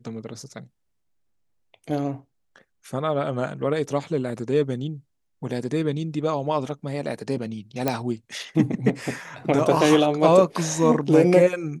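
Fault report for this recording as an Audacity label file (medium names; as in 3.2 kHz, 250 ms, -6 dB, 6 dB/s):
7.880000	7.880000	pop -8 dBFS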